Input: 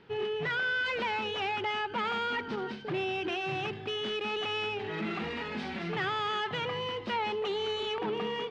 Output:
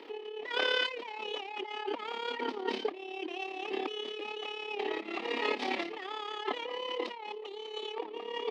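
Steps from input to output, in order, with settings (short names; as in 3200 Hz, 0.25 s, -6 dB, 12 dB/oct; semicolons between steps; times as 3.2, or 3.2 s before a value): bell 1500 Hz -15 dB 0.27 oct; negative-ratio compressor -39 dBFS, ratio -0.5; AM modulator 35 Hz, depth 50%; elliptic high-pass 280 Hz, stop band 70 dB; gain +8 dB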